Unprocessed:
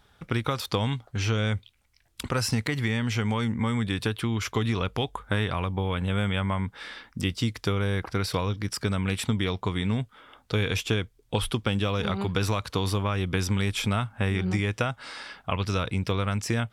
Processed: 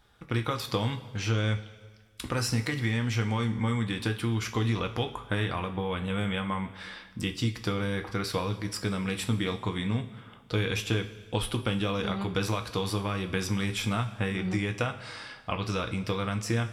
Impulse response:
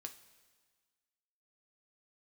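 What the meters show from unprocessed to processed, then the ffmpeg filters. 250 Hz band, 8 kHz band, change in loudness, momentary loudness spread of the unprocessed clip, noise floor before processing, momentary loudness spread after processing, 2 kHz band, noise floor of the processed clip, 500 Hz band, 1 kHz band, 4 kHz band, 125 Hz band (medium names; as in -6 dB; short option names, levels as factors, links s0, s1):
-2.0 dB, -2.0 dB, -2.5 dB, 5 LU, -63 dBFS, 5 LU, -2.0 dB, -52 dBFS, -2.0 dB, -2.0 dB, -2.5 dB, -3.0 dB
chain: -filter_complex "[1:a]atrim=start_sample=2205[s0];[0:a][s0]afir=irnorm=-1:irlink=0,volume=1.33"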